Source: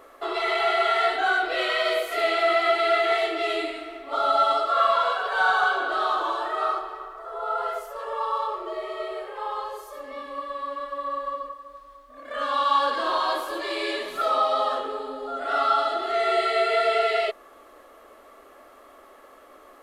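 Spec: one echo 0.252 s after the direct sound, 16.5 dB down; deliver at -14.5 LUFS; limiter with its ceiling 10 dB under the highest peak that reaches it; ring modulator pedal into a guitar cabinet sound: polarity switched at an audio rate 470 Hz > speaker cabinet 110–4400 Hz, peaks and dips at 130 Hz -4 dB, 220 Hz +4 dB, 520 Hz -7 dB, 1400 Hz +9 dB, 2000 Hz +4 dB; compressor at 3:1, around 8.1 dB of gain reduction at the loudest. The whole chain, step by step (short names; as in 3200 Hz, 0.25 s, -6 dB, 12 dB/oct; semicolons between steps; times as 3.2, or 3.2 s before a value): compressor 3:1, threshold -28 dBFS; limiter -27 dBFS; echo 0.252 s -16.5 dB; polarity switched at an audio rate 470 Hz; speaker cabinet 110–4400 Hz, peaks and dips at 130 Hz -4 dB, 220 Hz +4 dB, 520 Hz -7 dB, 1400 Hz +9 dB, 2000 Hz +4 dB; gain +17.5 dB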